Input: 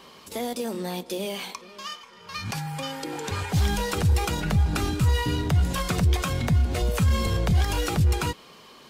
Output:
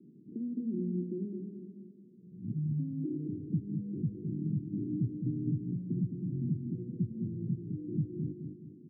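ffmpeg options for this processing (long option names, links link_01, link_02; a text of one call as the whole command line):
ffmpeg -i in.wav -filter_complex "[0:a]acompressor=threshold=-29dB:ratio=6,asuperpass=centerf=200:order=12:qfactor=0.86,asplit=2[link_01][link_02];[link_02]aecho=0:1:212|424|636|848|1060:0.501|0.2|0.0802|0.0321|0.0128[link_03];[link_01][link_03]amix=inputs=2:normalize=0,volume=2dB" out.wav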